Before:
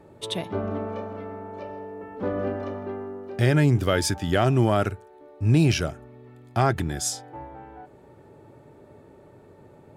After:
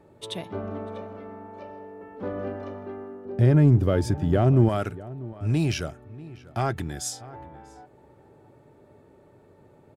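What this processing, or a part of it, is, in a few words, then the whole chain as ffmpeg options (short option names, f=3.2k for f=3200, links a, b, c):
parallel distortion: -filter_complex "[0:a]asettb=1/sr,asplit=3[a][b][c];[a]atrim=end=3.254[d];[b]atrim=start=3.25:end=4.69,asetpts=PTS-STARTPTS,afade=t=in:d=0.004:c=qsin,afade=t=out:st=1.436:d=0.004:c=qsin,tiltshelf=f=970:g=9[e];[c]atrim=start=4.686[f];[d][e]acrossfade=d=0.004:c1=hsin:c2=qsin[g];[g][f]acrossfade=d=0.004:c1=qsin:c2=hsin,asplit=2[h][i];[i]asoftclip=type=hard:threshold=-17.5dB,volume=-11dB[j];[h][j]amix=inputs=2:normalize=0,asplit=2[k][l];[l]adelay=641.4,volume=-18dB,highshelf=f=4k:g=-14.4[m];[k][m]amix=inputs=2:normalize=0,volume=-6.5dB"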